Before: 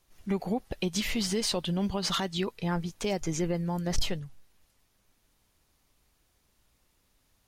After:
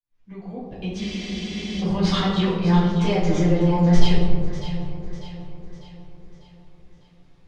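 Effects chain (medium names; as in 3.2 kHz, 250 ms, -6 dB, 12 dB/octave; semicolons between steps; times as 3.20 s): fade-in on the opening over 2.28 s; low-pass 4.1 kHz 12 dB/octave; echo whose repeats swap between lows and highs 299 ms, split 1.1 kHz, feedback 69%, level -8 dB; reverberation RT60 1.1 s, pre-delay 6 ms, DRR -7.5 dB; spectral freeze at 1.02 s, 0.80 s; trim -2 dB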